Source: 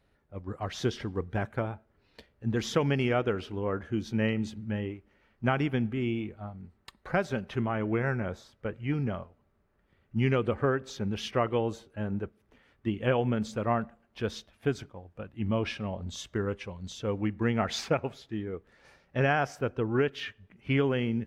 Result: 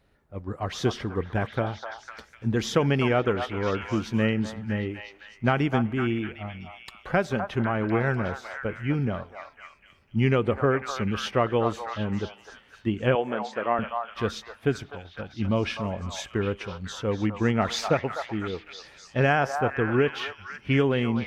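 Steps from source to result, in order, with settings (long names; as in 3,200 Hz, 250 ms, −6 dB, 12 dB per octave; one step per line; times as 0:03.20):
0:13.15–0:13.79: band-pass filter 370–4,300 Hz
echo through a band-pass that steps 252 ms, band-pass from 950 Hz, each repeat 0.7 octaves, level −3 dB
level +4 dB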